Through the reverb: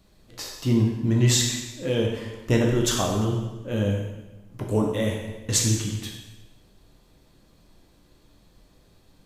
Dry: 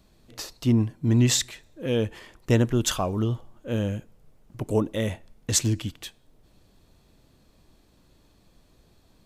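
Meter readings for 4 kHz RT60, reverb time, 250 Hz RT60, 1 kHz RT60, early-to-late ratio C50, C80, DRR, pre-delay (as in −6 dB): 1.0 s, 1.1 s, 1.1 s, 1.1 s, 3.5 dB, 5.5 dB, −1.0 dB, 5 ms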